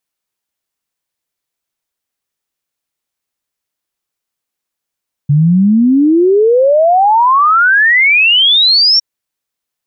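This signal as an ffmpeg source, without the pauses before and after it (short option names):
-f lavfi -i "aevalsrc='0.531*clip(min(t,3.71-t)/0.01,0,1)*sin(2*PI*140*3.71/log(5600/140)*(exp(log(5600/140)*t/3.71)-1))':d=3.71:s=44100"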